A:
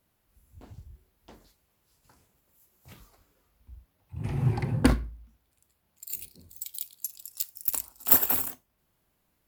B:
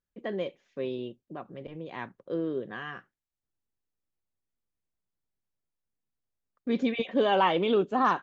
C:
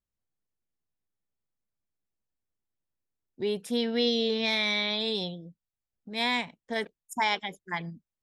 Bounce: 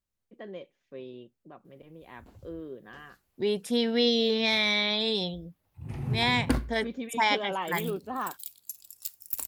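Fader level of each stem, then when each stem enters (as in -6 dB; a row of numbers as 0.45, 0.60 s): -5.0, -9.0, +2.0 dB; 1.65, 0.15, 0.00 s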